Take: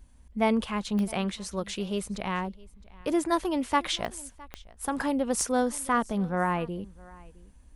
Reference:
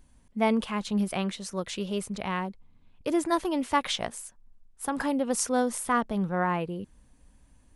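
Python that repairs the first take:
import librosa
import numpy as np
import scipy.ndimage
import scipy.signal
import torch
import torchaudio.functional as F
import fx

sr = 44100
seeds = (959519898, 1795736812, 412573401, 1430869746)

y = fx.fix_declick_ar(x, sr, threshold=10.0)
y = fx.noise_reduce(y, sr, print_start_s=7.24, print_end_s=7.74, reduce_db=6.0)
y = fx.fix_echo_inverse(y, sr, delay_ms=662, level_db=-23.0)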